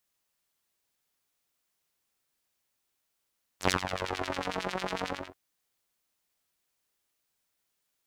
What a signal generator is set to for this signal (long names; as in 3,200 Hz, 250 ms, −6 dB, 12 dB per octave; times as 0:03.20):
subtractive patch with filter wobble F#2, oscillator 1 saw, oscillator 2 saw, oscillator 2 level −0.5 dB, sub −7 dB, noise −26.5 dB, filter bandpass, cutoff 1,100 Hz, Q 1.2, filter envelope 1.5 octaves, attack 92 ms, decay 0.10 s, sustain −12 dB, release 0.27 s, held 1.47 s, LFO 11 Hz, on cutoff 1.4 octaves